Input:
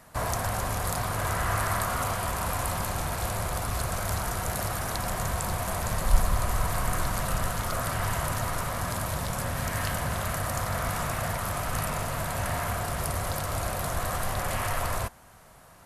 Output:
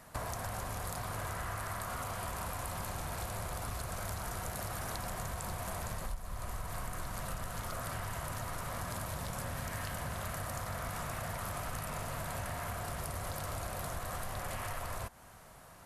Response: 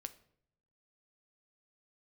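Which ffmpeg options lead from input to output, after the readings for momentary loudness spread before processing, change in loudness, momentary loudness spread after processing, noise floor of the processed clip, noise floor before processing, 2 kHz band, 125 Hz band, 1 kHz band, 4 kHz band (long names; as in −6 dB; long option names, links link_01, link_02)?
3 LU, −10.0 dB, 2 LU, −55 dBFS, −53 dBFS, −10.0 dB, −10.0 dB, −10.0 dB, −9.5 dB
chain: -af "acompressor=threshold=-33dB:ratio=16,volume=-2dB"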